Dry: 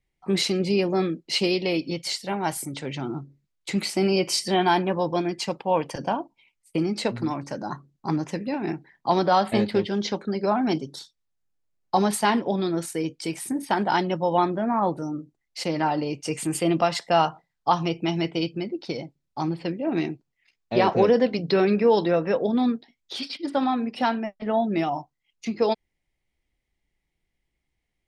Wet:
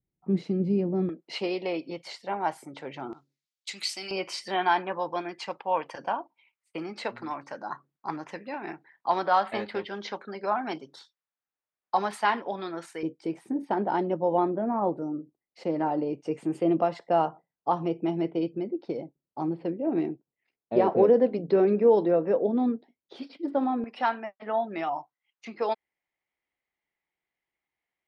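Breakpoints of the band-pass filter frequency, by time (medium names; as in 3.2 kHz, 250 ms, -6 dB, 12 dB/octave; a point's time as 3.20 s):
band-pass filter, Q 0.92
180 Hz
from 1.09 s 860 Hz
from 3.13 s 4.6 kHz
from 4.11 s 1.3 kHz
from 13.03 s 420 Hz
from 23.84 s 1.2 kHz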